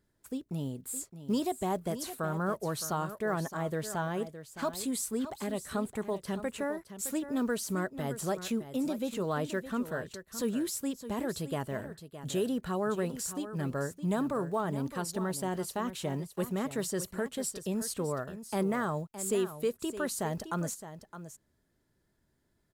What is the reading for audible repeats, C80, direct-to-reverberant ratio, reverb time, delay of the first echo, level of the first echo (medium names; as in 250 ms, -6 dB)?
1, no reverb, no reverb, no reverb, 615 ms, -12.0 dB